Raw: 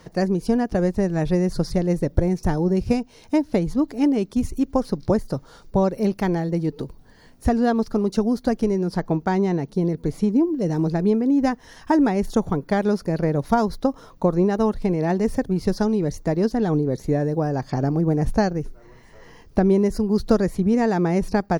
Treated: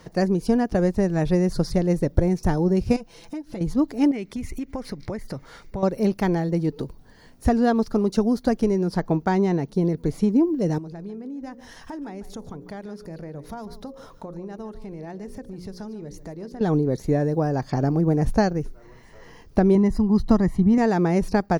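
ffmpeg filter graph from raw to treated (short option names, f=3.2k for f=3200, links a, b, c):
-filter_complex "[0:a]asettb=1/sr,asplit=3[a][b][c];[a]atrim=end=2.964[d];[b]atrim=start=2.96:end=3.61,asetpts=PTS-STARTPTS,afade=t=in:d=0.004:c=qsin,afade=t=out:st=0.646:d=0.004:c=qsin,aecho=1:1:5.9:0.76,atrim=end_sample=28665,acompressor=threshold=-32dB:ratio=4:attack=3.2:release=140:knee=1:detection=peak[e];[c]atrim=start=3.606[f];[d][e]acrossfade=d=0.004:c1=hsin:c2=qsin[g];[g][f]acrossfade=d=0.004:c1=qsin:c2=hsin,asettb=1/sr,asplit=3[h][i][j];[h]atrim=end=4.114[k];[i]atrim=start=4.11:end=5.83,asetpts=PTS-STARTPTS,afade=t=in:d=0.004:c=qsin,afade=t=out:st=1.716:d=0.004:c=qsin,equalizer=f=2.1k:w=2.5:g=14.5,acompressor=threshold=-27dB:ratio=5:attack=3.2:release=140:knee=1:detection=peak[l];[j]atrim=start=5.826[m];[k][l]acrossfade=d=0.004:c1=hsin:c2=qsin[n];[n][m]acrossfade=d=0.004:c1=qsin:c2=hsin,asettb=1/sr,asplit=3[o][p][q];[o]atrim=end=10.784[r];[p]atrim=start=10.78:end=16.61,asetpts=PTS-STARTPTS,afade=t=in:d=0.004:c=qsin,afade=t=out:st=5.826:d=0.004:c=qsin,bandreject=f=60:t=h:w=6,bandreject=f=120:t=h:w=6,bandreject=f=180:t=h:w=6,bandreject=f=240:t=h:w=6,bandreject=f=300:t=h:w=6,bandreject=f=360:t=h:w=6,bandreject=f=420:t=h:w=6,bandreject=f=480:t=h:w=6,bandreject=f=540:t=h:w=6,acompressor=threshold=-38dB:ratio=3:attack=3.2:release=140:knee=1:detection=peak,aecho=1:1:147:0.178,atrim=end_sample=257103[s];[q]atrim=start=16.606[t];[r][s]acrossfade=d=0.004:c1=hsin:c2=qsin[u];[u][t]acrossfade=d=0.004:c1=qsin:c2=hsin,asettb=1/sr,asplit=3[v][w][x];[v]atrim=end=19.754[y];[w]atrim=start=19.75:end=20.78,asetpts=PTS-STARTPTS,afade=t=in:d=0.004:c=qsin,afade=t=out:st=1.026:d=0.004:c=qsin,highshelf=f=3k:g=-10.5,aecho=1:1:1:0.65,atrim=end_sample=45423[z];[x]atrim=start=20.776[aa];[y][z]acrossfade=d=0.004:c1=hsin:c2=qsin[ab];[ab][aa]acrossfade=d=0.004:c1=qsin:c2=hsin"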